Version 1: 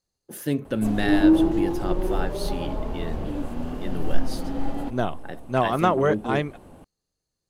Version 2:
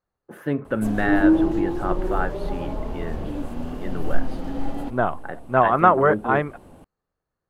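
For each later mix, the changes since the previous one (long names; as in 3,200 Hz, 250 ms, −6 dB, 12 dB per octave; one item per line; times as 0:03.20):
speech: add drawn EQ curve 300 Hz 0 dB, 1,400 Hz +9 dB, 5,200 Hz −18 dB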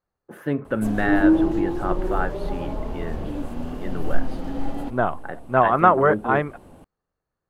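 nothing changed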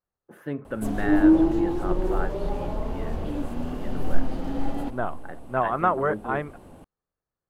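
speech −7.0 dB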